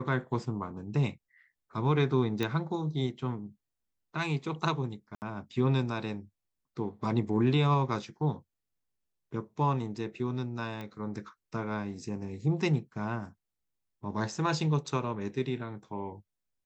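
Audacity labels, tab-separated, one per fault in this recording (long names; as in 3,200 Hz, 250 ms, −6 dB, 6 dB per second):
2.430000	2.430000	click −17 dBFS
5.150000	5.220000	drop-out 69 ms
10.810000	10.810000	click −27 dBFS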